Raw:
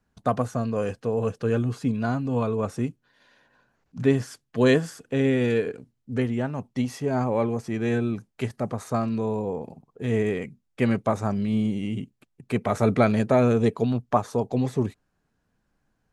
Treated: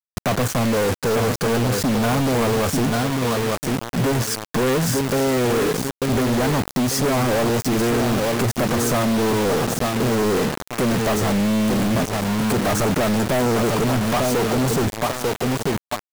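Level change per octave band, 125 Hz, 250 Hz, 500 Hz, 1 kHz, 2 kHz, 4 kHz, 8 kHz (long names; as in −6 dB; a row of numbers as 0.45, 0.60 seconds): +5.0, +5.0, +5.0, +7.5, +9.0, +15.0, +19.5 decibels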